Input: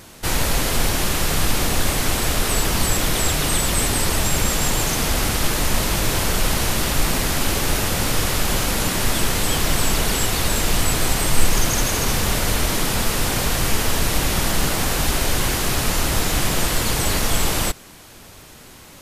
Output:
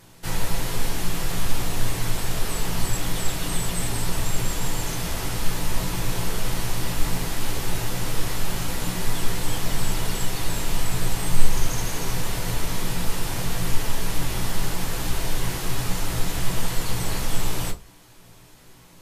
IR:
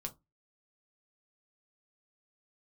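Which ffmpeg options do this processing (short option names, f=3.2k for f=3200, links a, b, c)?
-filter_complex "[1:a]atrim=start_sample=2205,asetrate=37044,aresample=44100[a];[0:a][a]afir=irnorm=-1:irlink=0,volume=-7.5dB"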